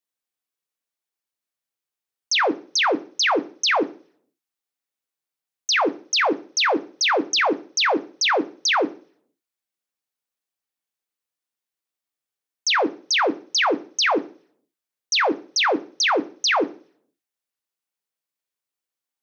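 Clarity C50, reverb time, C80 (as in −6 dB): 20.0 dB, 0.45 s, 24.5 dB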